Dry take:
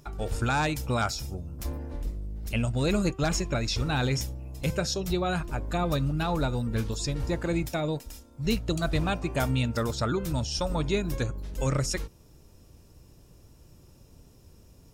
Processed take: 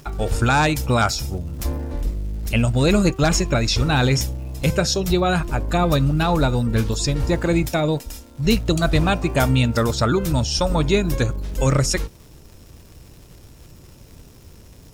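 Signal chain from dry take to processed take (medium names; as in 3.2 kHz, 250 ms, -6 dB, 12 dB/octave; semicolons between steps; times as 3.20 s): crackle 350 per s -49 dBFS; trim +9 dB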